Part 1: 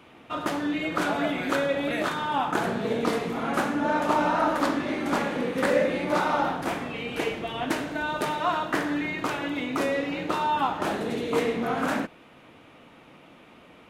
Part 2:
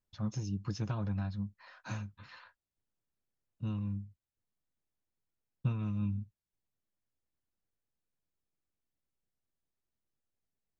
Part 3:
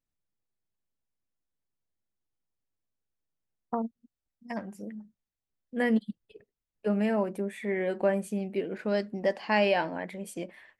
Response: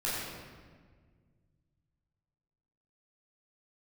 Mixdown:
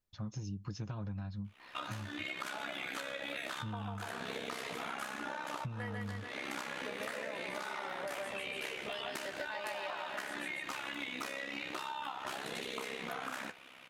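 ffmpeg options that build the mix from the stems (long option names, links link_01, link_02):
-filter_complex "[0:a]tiltshelf=frequency=860:gain=-9,tremolo=f=66:d=0.824,adelay=1450,volume=2.5dB[link_01];[1:a]volume=-1dB,asplit=2[link_02][link_03];[2:a]highpass=700,volume=0dB,asplit=2[link_04][link_05];[link_05]volume=-7.5dB[link_06];[link_03]apad=whole_len=676746[link_07];[link_01][link_07]sidechaincompress=threshold=-49dB:ratio=5:attack=10:release=322[link_08];[link_08][link_04]amix=inputs=2:normalize=0,flanger=delay=4.7:depth=9.2:regen=65:speed=0.39:shape=sinusoidal,acompressor=threshold=-32dB:ratio=6,volume=0dB[link_09];[link_06]aecho=0:1:144|288|432|576|720|864|1008|1152|1296:1|0.59|0.348|0.205|0.121|0.0715|0.0422|0.0249|0.0147[link_10];[link_02][link_09][link_10]amix=inputs=3:normalize=0,acompressor=threshold=-37dB:ratio=6"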